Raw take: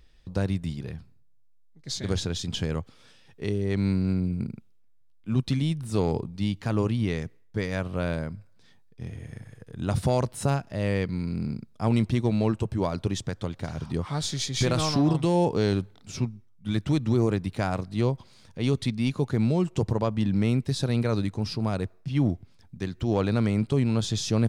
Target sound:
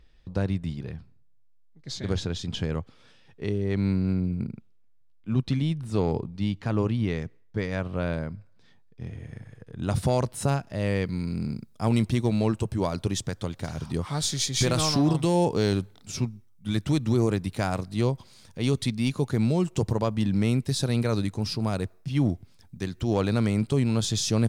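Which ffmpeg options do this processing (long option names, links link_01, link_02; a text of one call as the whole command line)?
ffmpeg -i in.wav -af "asetnsamples=nb_out_samples=441:pad=0,asendcmd='9.83 highshelf g 2.5;11.06 highshelf g 10',highshelf=frequency=6700:gain=-11" out.wav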